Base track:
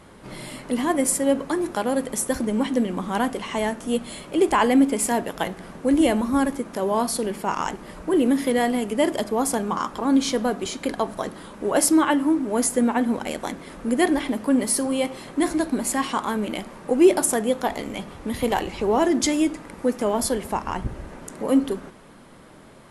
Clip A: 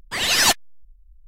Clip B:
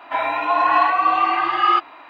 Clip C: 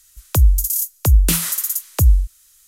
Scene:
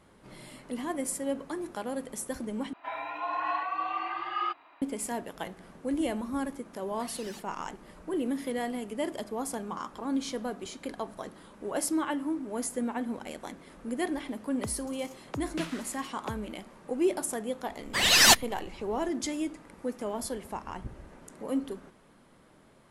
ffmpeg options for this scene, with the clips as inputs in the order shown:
ffmpeg -i bed.wav -i cue0.wav -i cue1.wav -i cue2.wav -filter_complex "[1:a]asplit=2[link_01][link_02];[0:a]volume=-11.5dB[link_03];[link_01]acompressor=threshold=-31dB:ratio=6:attack=3.2:release=140:knee=1:detection=peak[link_04];[3:a]highpass=220,lowpass=2800[link_05];[link_03]asplit=2[link_06][link_07];[link_06]atrim=end=2.734[link_08];[2:a]atrim=end=2.09,asetpts=PTS-STARTPTS,volume=-15dB[link_09];[link_07]atrim=start=4.816[link_10];[link_04]atrim=end=1.27,asetpts=PTS-STARTPTS,volume=-16dB,afade=type=in:duration=0.004:curve=hsin,afade=type=out:start_time=1.266:duration=0.004:curve=hsin,adelay=6880[link_11];[link_05]atrim=end=2.67,asetpts=PTS-STARTPTS,volume=-11dB,afade=type=in:duration=0.004:curve=hsin,afade=type=out:start_time=2.666:duration=0.004:curve=hsin,adelay=14290[link_12];[link_02]atrim=end=1.27,asetpts=PTS-STARTPTS,volume=-1.5dB,afade=type=in:duration=0.004:curve=hsin,afade=type=out:start_time=1.266:duration=0.004:curve=hsin,adelay=17820[link_13];[link_08][link_09]acrossfade=duration=0.004:curve1=hsin:curve2=hsin[link_14];[link_14][link_10]acrossfade=duration=0.004:curve1=hsin:curve2=hsin[link_15];[link_15][link_11][link_12][link_13]amix=inputs=4:normalize=0" out.wav

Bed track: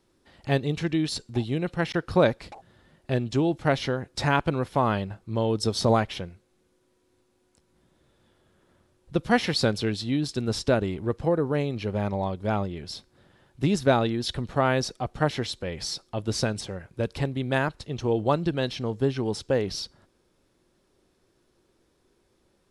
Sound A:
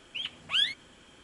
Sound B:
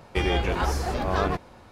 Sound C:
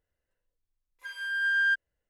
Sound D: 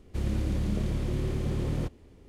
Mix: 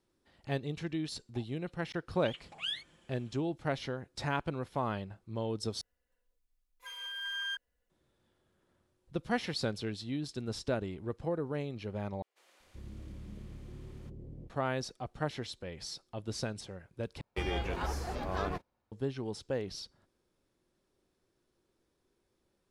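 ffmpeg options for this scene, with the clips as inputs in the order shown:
ffmpeg -i bed.wav -i cue0.wav -i cue1.wav -i cue2.wav -i cue3.wav -filter_complex "[0:a]volume=-10.5dB[link_01];[1:a]aecho=1:1:5.8:0.65[link_02];[3:a]aecho=1:1:4.1:0.81[link_03];[4:a]acrossover=split=630[link_04][link_05];[link_04]adelay=380[link_06];[link_06][link_05]amix=inputs=2:normalize=0[link_07];[2:a]agate=range=-22dB:threshold=-39dB:ratio=16:release=100:detection=peak[link_08];[link_01]asplit=4[link_09][link_10][link_11][link_12];[link_09]atrim=end=5.814[link_13];[link_03]atrim=end=2.09,asetpts=PTS-STARTPTS,volume=-1dB[link_14];[link_10]atrim=start=7.896:end=12.224[link_15];[link_07]atrim=end=2.28,asetpts=PTS-STARTPTS,volume=-17.5dB[link_16];[link_11]atrim=start=14.496:end=17.214[link_17];[link_08]atrim=end=1.71,asetpts=PTS-STARTPTS,volume=-10dB[link_18];[link_12]atrim=start=18.916[link_19];[link_02]atrim=end=1.23,asetpts=PTS-STARTPTS,volume=-12dB,afade=type=in:duration=0.004:curve=hsin,afade=type=out:start_time=1.226:duration=0.004:curve=hsin,adelay=2090[link_20];[link_13][link_14]acrossfade=duration=0.004:curve1=hsin:curve2=hsin[link_21];[link_21][link_15]acrossfade=duration=0.004:curve1=hsin:curve2=hsin[link_22];[link_22][link_16]acrossfade=duration=0.004:curve1=hsin:curve2=hsin[link_23];[link_23][link_17]acrossfade=duration=0.004:curve1=hsin:curve2=hsin[link_24];[link_24][link_18]acrossfade=duration=0.004:curve1=hsin:curve2=hsin[link_25];[link_25][link_19]acrossfade=duration=0.004:curve1=hsin:curve2=hsin[link_26];[link_26][link_20]amix=inputs=2:normalize=0" out.wav

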